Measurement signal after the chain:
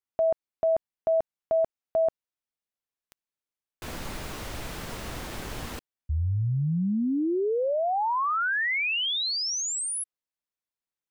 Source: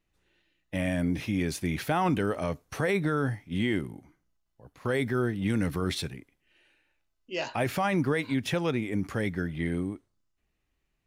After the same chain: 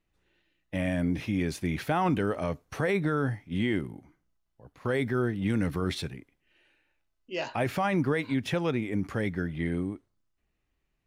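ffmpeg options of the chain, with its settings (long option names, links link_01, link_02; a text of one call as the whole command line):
ffmpeg -i in.wav -af "highshelf=frequency=4500:gain=-6" out.wav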